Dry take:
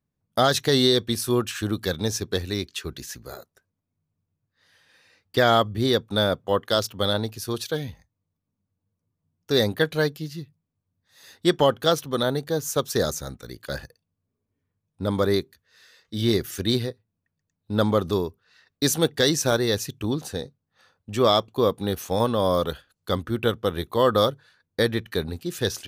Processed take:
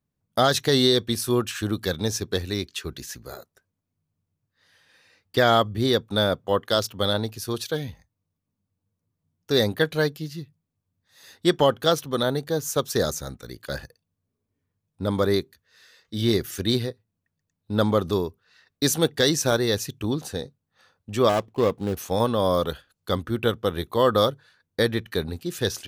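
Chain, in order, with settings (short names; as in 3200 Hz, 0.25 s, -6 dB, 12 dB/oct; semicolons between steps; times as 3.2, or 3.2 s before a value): 21.29–21.97 median filter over 25 samples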